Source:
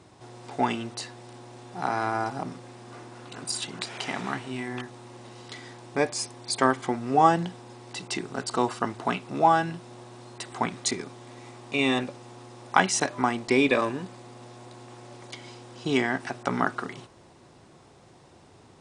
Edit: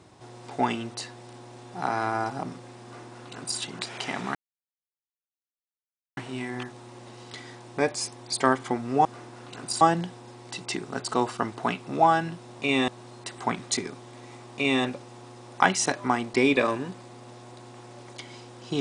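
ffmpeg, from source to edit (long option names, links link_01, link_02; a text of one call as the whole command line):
ffmpeg -i in.wav -filter_complex "[0:a]asplit=6[link_01][link_02][link_03][link_04][link_05][link_06];[link_01]atrim=end=4.35,asetpts=PTS-STARTPTS,afade=type=out:start_time=4.346:duration=0.004:curve=hsin,apad=pad_dur=1.82[link_07];[link_02]atrim=start=4.35:end=7.232,asetpts=PTS-STARTPTS,afade=type=in:duration=0.004:curve=hsin[link_08];[link_03]atrim=start=2.838:end=3.602[link_09];[link_04]atrim=start=7.228:end=10.022[link_10];[link_05]atrim=start=11.698:end=11.982[link_11];[link_06]atrim=start=10.018[link_12];[link_07][link_08]concat=n=2:v=0:a=1[link_13];[link_13][link_09]acrossfade=duration=0.004:curve1=hsin:curve2=hsin[link_14];[link_14][link_10]acrossfade=duration=0.004:curve1=hsin:curve2=hsin[link_15];[link_15][link_11]acrossfade=duration=0.004:curve1=hsin:curve2=hsin[link_16];[link_16][link_12]acrossfade=duration=0.004:curve1=hsin:curve2=hsin" out.wav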